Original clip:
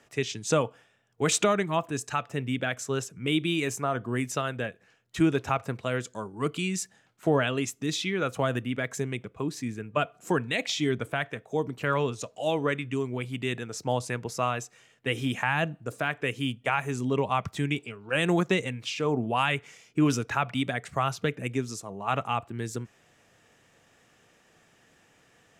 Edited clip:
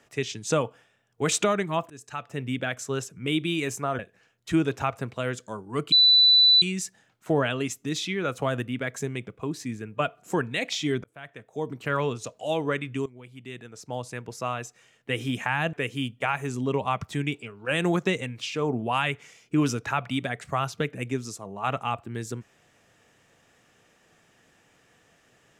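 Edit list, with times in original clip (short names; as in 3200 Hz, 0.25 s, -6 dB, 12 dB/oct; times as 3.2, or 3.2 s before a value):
1.9–2.47 fade in, from -19 dB
3.99–4.66 cut
6.59 add tone 3980 Hz -13.5 dBFS 0.70 s
11.01–11.82 fade in
13.03–15.08 fade in, from -17 dB
15.7–16.17 cut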